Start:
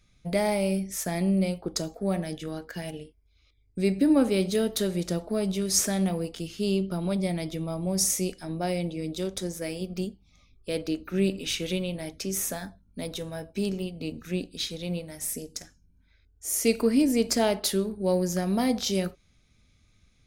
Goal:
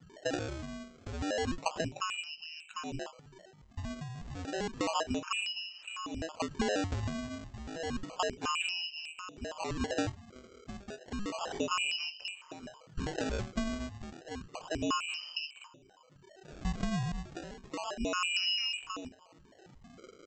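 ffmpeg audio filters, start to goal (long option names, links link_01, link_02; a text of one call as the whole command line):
ffmpeg -i in.wav -af "tiltshelf=frequency=1100:gain=8.5,alimiter=limit=-14dB:level=0:latency=1:release=65,acompressor=threshold=-30dB:ratio=5,tremolo=f=0.6:d=0.77,lowpass=frequency=2600:width_type=q:width=0.5098,lowpass=frequency=2600:width_type=q:width=0.6013,lowpass=frequency=2600:width_type=q:width=0.9,lowpass=frequency=2600:width_type=q:width=2.563,afreqshift=-3100,aecho=1:1:375|750|1125:0.0631|0.0265|0.0111,aresample=16000,acrusher=samples=10:mix=1:aa=0.000001:lfo=1:lforange=16:lforate=0.31,aresample=44100" out.wav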